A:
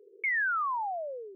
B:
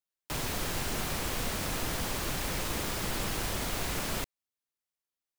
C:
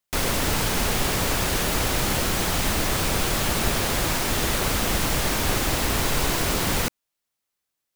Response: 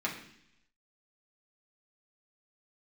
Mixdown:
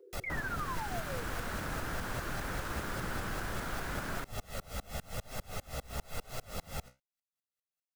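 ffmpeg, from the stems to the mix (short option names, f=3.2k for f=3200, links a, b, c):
-filter_complex "[0:a]aecho=1:1:5.8:0.92,volume=-1dB[a];[1:a]equalizer=f=1.5k:w=1.9:g=12.5,volume=-0.5dB[b];[2:a]aecho=1:1:1.5:0.74,flanger=delay=7.4:depth=8.7:regen=46:speed=0.94:shape=triangular,aeval=exprs='val(0)*pow(10,-32*if(lt(mod(-5*n/s,1),2*abs(-5)/1000),1-mod(-5*n/s,1)/(2*abs(-5)/1000),(mod(-5*n/s,1)-2*abs(-5)/1000)/(1-2*abs(-5)/1000))/20)':c=same,volume=-5dB[c];[a][b][c]amix=inputs=3:normalize=0,acrossover=split=340|1200[d][e][f];[d]acompressor=threshold=-36dB:ratio=4[g];[e]acompressor=threshold=-42dB:ratio=4[h];[f]acompressor=threshold=-45dB:ratio=4[i];[g][h][i]amix=inputs=3:normalize=0"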